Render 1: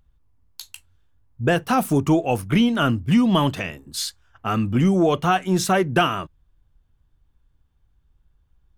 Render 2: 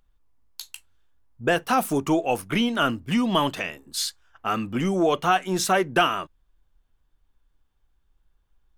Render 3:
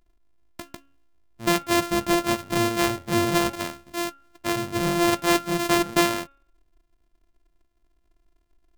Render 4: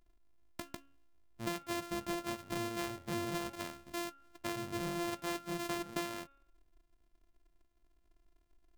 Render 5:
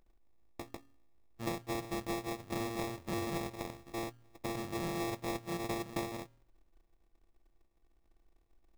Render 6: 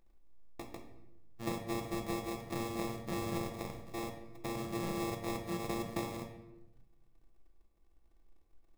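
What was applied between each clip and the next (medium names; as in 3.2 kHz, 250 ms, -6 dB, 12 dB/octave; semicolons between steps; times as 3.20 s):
peaking EQ 95 Hz -13.5 dB 2.3 oct
sorted samples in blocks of 128 samples; de-hum 276.5 Hz, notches 13
compression 4:1, threshold -33 dBFS, peak gain reduction 15 dB; trim -4.5 dB
sample-rate reducer 1.5 kHz, jitter 0%; trim +1 dB
simulated room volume 350 m³, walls mixed, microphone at 0.76 m; trim -2 dB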